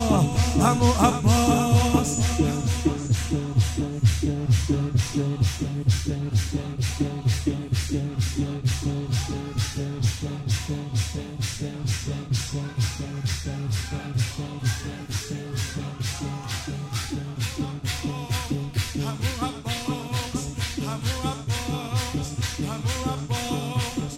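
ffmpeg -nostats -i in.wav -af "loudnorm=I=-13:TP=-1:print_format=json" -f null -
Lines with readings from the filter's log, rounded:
"input_i" : "-25.9",
"input_tp" : "-5.0",
"input_lra" : "7.0",
"input_thresh" : "-35.9",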